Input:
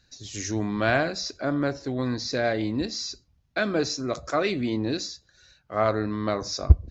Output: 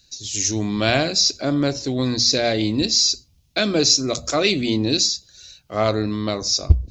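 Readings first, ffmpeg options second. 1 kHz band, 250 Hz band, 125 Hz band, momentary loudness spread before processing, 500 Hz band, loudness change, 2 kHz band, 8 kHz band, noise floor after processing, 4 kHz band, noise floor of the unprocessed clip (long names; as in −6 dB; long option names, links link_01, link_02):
+2.0 dB, +5.5 dB, +3.5 dB, 10 LU, +4.0 dB, +7.5 dB, +3.0 dB, can't be measured, −58 dBFS, +14.5 dB, −66 dBFS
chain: -af "bandreject=frequency=60:width_type=h:width=6,bandreject=frequency=120:width_type=h:width=6,bandreject=frequency=180:width_type=h:width=6,bandreject=frequency=240:width_type=h:width=6,dynaudnorm=framelen=110:gausssize=11:maxgain=4.5dB,aexciter=amount=7.5:drive=1:freq=2400,tiltshelf=frequency=700:gain=4,volume=-1dB"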